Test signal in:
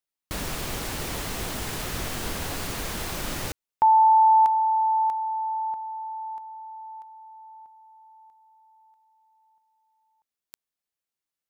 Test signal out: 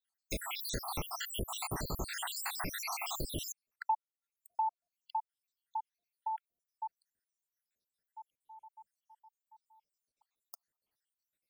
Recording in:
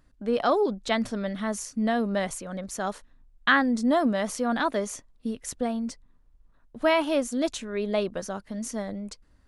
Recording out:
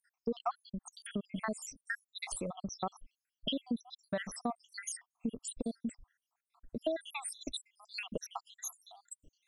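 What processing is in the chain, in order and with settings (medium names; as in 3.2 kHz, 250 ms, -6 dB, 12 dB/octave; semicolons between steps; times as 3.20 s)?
random holes in the spectrogram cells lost 83%; compression 3:1, threshold -43 dBFS; trim +6.5 dB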